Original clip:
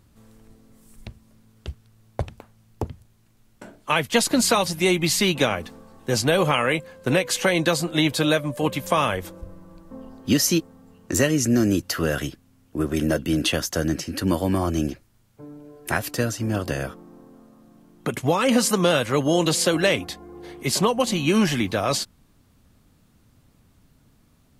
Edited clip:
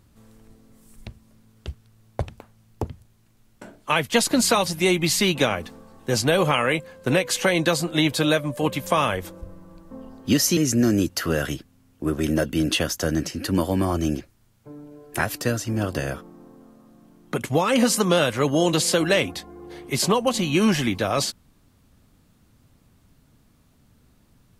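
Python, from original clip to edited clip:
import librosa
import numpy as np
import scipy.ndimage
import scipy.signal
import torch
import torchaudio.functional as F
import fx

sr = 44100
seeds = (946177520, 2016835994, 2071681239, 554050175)

y = fx.edit(x, sr, fx.cut(start_s=10.57, length_s=0.73), tone=tone)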